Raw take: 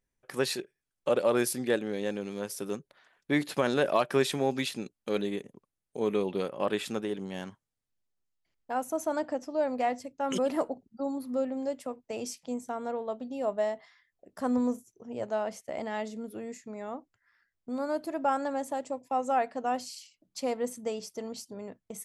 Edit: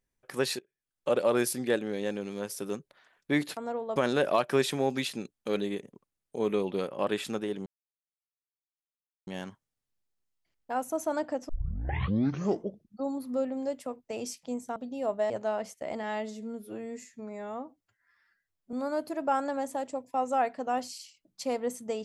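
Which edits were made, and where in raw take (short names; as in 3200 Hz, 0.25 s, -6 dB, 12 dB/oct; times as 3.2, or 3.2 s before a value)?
0.59–1.14 fade in, from -23.5 dB
7.27 insert silence 1.61 s
9.49 tape start 1.56 s
12.76–13.15 move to 3.57
13.69–15.17 cut
15.9–17.7 stretch 1.5×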